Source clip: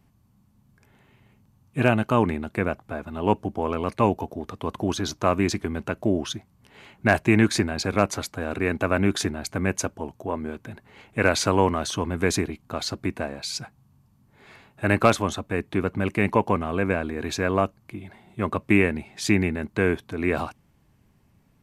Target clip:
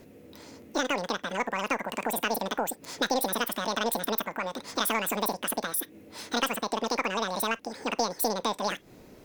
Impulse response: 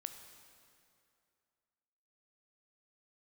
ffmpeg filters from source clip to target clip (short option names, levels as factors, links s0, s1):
-filter_complex "[0:a]acompressor=threshold=0.00398:ratio=2,aeval=exprs='0.1*(cos(1*acos(clip(val(0)/0.1,-1,1)))-cos(1*PI/2))+0.00447*(cos(4*acos(clip(val(0)/0.1,-1,1)))-cos(4*PI/2))':c=same,lowpass=f=7200:t=q:w=2,asplit=2[s0][s1];[1:a]atrim=start_sample=2205,afade=t=out:st=0.18:d=0.01,atrim=end_sample=8379[s2];[s1][s2]afir=irnorm=-1:irlink=0,volume=0.794[s3];[s0][s3]amix=inputs=2:normalize=0,asetrate=103194,aresample=44100,volume=2.11"